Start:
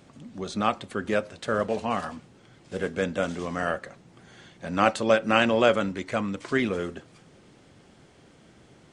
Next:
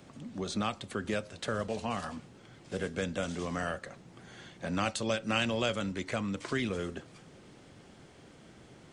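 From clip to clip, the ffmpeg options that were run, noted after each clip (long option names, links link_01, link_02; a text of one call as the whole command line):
ffmpeg -i in.wav -filter_complex "[0:a]acrossover=split=150|3000[link_01][link_02][link_03];[link_02]acompressor=threshold=-34dB:ratio=3[link_04];[link_01][link_04][link_03]amix=inputs=3:normalize=0" out.wav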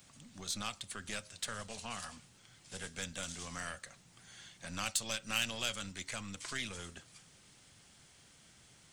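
ffmpeg -i in.wav -af "aeval=exprs='0.168*(cos(1*acos(clip(val(0)/0.168,-1,1)))-cos(1*PI/2))+0.0119*(cos(6*acos(clip(val(0)/0.168,-1,1)))-cos(6*PI/2))':channel_layout=same,crystalizer=i=3.5:c=0,equalizer=frequency=370:width=0.69:gain=-10.5,volume=-7dB" out.wav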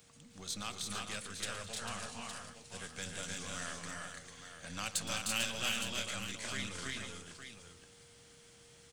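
ffmpeg -i in.wav -filter_complex "[0:a]aeval=exprs='val(0)+0.000316*sin(2*PI*470*n/s)':channel_layout=same,asplit=2[link_01][link_02];[link_02]aecho=0:1:117|211|306|336|447|864:0.158|0.119|0.596|0.668|0.398|0.335[link_03];[link_01][link_03]amix=inputs=2:normalize=0,volume=-2dB" out.wav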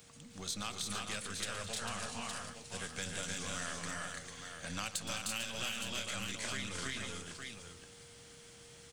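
ffmpeg -i in.wav -af "acompressor=threshold=-39dB:ratio=6,volume=4dB" out.wav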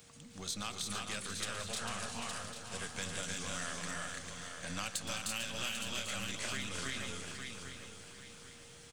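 ffmpeg -i in.wav -af "aecho=1:1:795|1590|2385|3180:0.299|0.11|0.0409|0.0151" out.wav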